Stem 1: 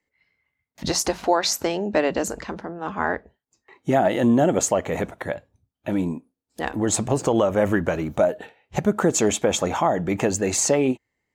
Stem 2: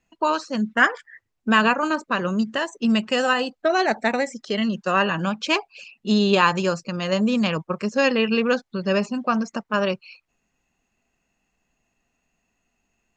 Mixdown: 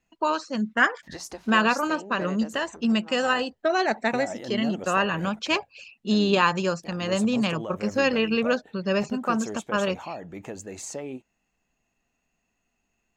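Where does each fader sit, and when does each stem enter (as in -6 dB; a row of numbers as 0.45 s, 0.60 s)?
-15.5 dB, -3.0 dB; 0.25 s, 0.00 s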